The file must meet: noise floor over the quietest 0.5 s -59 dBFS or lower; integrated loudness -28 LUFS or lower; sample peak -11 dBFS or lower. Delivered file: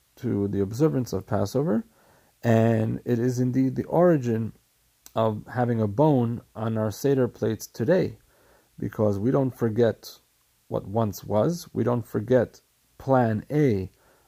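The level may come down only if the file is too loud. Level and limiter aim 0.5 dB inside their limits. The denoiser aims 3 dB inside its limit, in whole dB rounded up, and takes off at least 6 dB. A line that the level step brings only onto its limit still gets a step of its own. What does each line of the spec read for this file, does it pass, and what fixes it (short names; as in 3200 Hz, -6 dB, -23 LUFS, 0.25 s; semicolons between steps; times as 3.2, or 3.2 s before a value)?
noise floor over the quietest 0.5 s -66 dBFS: OK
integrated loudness -25.0 LUFS: fail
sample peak -7.0 dBFS: fail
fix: gain -3.5 dB; limiter -11.5 dBFS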